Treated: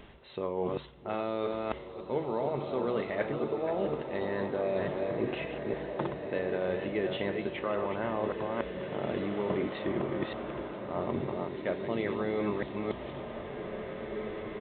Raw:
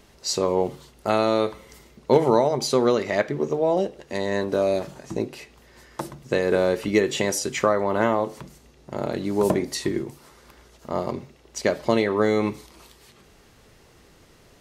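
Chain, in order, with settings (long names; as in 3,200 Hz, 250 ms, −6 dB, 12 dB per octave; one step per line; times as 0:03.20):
delay that plays each chunk backwards 287 ms, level −8.5 dB
reversed playback
downward compressor 6 to 1, threshold −33 dBFS, peak gain reduction 20 dB
reversed playback
downsampling to 8,000 Hz
slow-attack reverb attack 2,280 ms, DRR 5 dB
level +3 dB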